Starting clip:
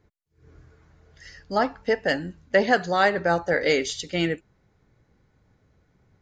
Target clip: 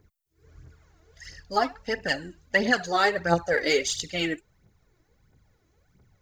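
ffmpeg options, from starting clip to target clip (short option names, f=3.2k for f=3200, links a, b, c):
-af "aemphasis=mode=production:type=50kf,aphaser=in_gain=1:out_gain=1:delay=3.2:decay=0.63:speed=1.5:type=triangular,volume=-4.5dB"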